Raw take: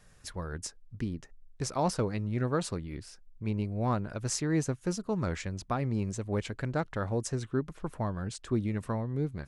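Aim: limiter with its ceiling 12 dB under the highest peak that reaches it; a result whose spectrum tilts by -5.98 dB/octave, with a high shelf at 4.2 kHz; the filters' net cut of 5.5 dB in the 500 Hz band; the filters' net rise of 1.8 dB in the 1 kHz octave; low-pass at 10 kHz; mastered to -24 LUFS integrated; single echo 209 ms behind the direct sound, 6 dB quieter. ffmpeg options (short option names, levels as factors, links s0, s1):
-af "lowpass=10000,equalizer=f=500:t=o:g=-8.5,equalizer=f=1000:t=o:g=5.5,highshelf=f=4200:g=-9,alimiter=level_in=1.78:limit=0.0631:level=0:latency=1,volume=0.562,aecho=1:1:209:0.501,volume=5.31"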